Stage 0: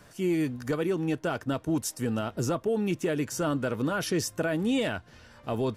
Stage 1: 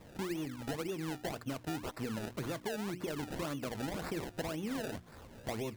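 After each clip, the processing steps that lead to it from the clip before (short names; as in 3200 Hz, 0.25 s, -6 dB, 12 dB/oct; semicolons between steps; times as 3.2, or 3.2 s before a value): notches 60/120/180/240/300/360 Hz; decimation with a swept rate 28×, swing 100% 1.9 Hz; compressor 6:1, threshold -36 dBFS, peak gain reduction 13 dB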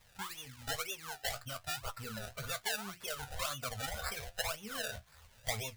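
spectral noise reduction 12 dB; flange 1.1 Hz, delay 6.9 ms, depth 9.1 ms, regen +47%; passive tone stack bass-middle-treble 10-0-10; gain +17 dB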